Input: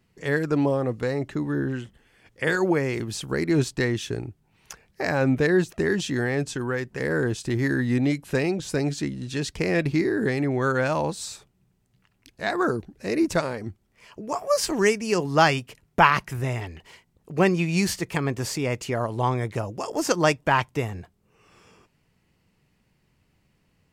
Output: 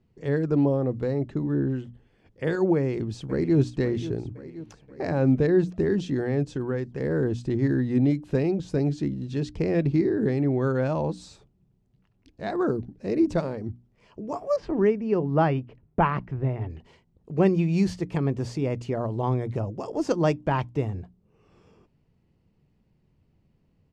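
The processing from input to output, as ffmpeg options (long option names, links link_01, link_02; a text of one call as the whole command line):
ffmpeg -i in.wav -filter_complex "[0:a]asplit=2[link_01][link_02];[link_02]afade=type=in:start_time=2.76:duration=0.01,afade=type=out:start_time=3.57:duration=0.01,aecho=0:1:530|1060|1590|2120|2650|3180|3710:0.237137|0.142282|0.0853695|0.0512217|0.030733|0.0184398|0.0110639[link_03];[link_01][link_03]amix=inputs=2:normalize=0,asettb=1/sr,asplit=3[link_04][link_05][link_06];[link_04]atrim=end=14.564[link_07];[link_05]atrim=start=14.56:end=16.7,asetpts=PTS-STARTPTS,afade=type=in:duration=0.004:curve=qsin,afade=type=out:start_time=2.136:duration=0.004:curve=qsin,lowpass=2200[link_08];[link_06]atrim=start=16.696[link_09];[link_07][link_08]acrossfade=duration=0.004:curve1=hsin:curve2=qsin[link_10];[link_10][link_09]acrossfade=duration=0.004:curve1=qsin:curve2=hsin,lowpass=3300,equalizer=frequency=1900:width=0.47:gain=-14,bandreject=frequency=60:width_type=h:width=6,bandreject=frequency=120:width_type=h:width=6,bandreject=frequency=180:width_type=h:width=6,bandreject=frequency=240:width_type=h:width=6,bandreject=frequency=300:width_type=h:width=6,volume=3dB" out.wav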